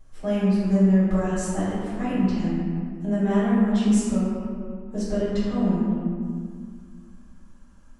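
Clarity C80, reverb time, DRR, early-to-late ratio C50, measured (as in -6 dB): -1.0 dB, 2.0 s, -13.0 dB, -3.5 dB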